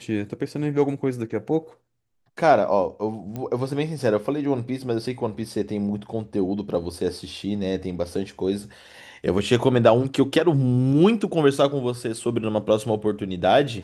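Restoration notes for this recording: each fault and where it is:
0:03.36: click −19 dBFS

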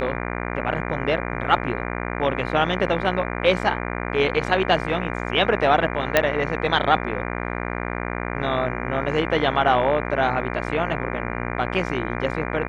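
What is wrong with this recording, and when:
mains buzz 60 Hz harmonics 40 −28 dBFS
0:06.17: click −2 dBFS

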